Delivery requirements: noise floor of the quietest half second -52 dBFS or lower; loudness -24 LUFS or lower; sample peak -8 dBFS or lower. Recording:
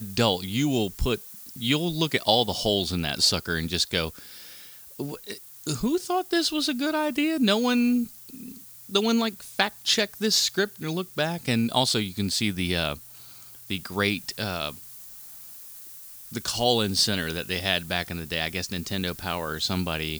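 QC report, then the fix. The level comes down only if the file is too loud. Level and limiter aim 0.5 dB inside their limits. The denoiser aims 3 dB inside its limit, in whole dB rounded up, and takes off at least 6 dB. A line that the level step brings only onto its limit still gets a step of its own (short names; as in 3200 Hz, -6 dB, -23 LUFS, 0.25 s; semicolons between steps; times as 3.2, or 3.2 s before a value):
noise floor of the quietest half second -46 dBFS: fail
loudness -25.5 LUFS: OK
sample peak -5.5 dBFS: fail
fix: denoiser 9 dB, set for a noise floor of -46 dBFS; limiter -8.5 dBFS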